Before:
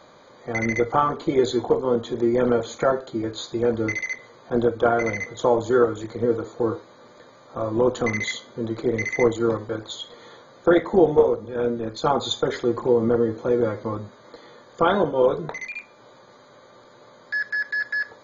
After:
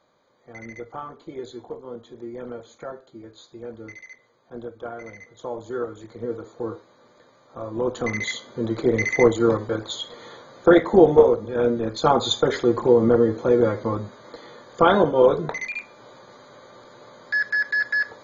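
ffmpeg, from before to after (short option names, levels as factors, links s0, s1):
-af "volume=1.41,afade=t=in:st=5.23:d=1.35:silence=0.375837,afade=t=in:st=7.72:d=1.1:silence=0.334965"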